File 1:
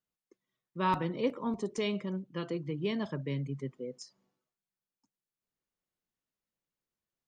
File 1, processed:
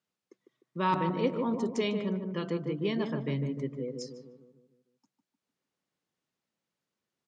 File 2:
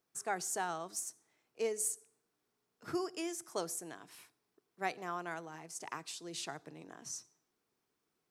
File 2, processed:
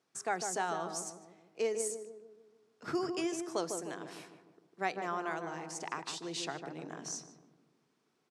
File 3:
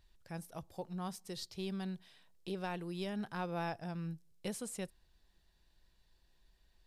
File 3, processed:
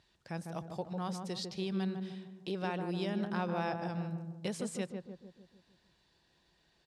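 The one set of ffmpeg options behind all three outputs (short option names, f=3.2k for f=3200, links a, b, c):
-filter_complex "[0:a]asplit=2[a][b];[b]acompressor=threshold=-43dB:ratio=6,volume=0dB[c];[a][c]amix=inputs=2:normalize=0,highpass=120,lowpass=7k,asplit=2[d][e];[e]adelay=151,lowpass=f=920:p=1,volume=-4dB,asplit=2[f][g];[g]adelay=151,lowpass=f=920:p=1,volume=0.55,asplit=2[h][i];[i]adelay=151,lowpass=f=920:p=1,volume=0.55,asplit=2[j][k];[k]adelay=151,lowpass=f=920:p=1,volume=0.55,asplit=2[l][m];[m]adelay=151,lowpass=f=920:p=1,volume=0.55,asplit=2[n][o];[o]adelay=151,lowpass=f=920:p=1,volume=0.55,asplit=2[p][q];[q]adelay=151,lowpass=f=920:p=1,volume=0.55[r];[d][f][h][j][l][n][p][r]amix=inputs=8:normalize=0"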